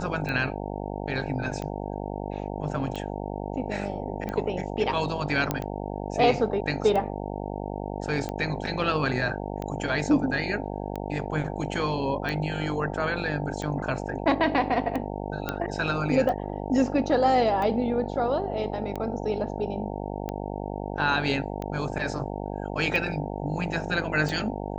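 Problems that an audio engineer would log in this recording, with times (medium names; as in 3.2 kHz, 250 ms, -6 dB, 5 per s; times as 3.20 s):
buzz 50 Hz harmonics 18 -33 dBFS
tick 45 rpm -19 dBFS
5.51 s: pop -10 dBFS
15.49 s: pop -13 dBFS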